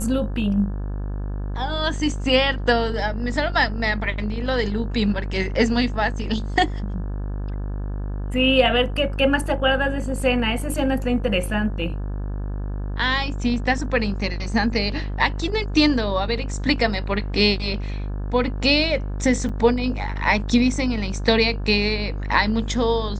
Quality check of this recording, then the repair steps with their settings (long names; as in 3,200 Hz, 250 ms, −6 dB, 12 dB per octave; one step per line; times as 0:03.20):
mains buzz 50 Hz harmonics 35 −27 dBFS
0:19.49: drop-out 4.1 ms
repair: hum removal 50 Hz, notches 35
repair the gap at 0:19.49, 4.1 ms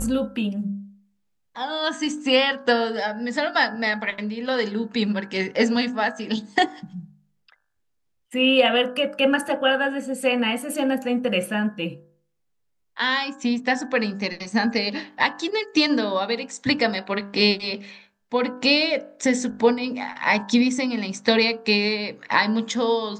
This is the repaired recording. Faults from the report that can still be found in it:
none of them is left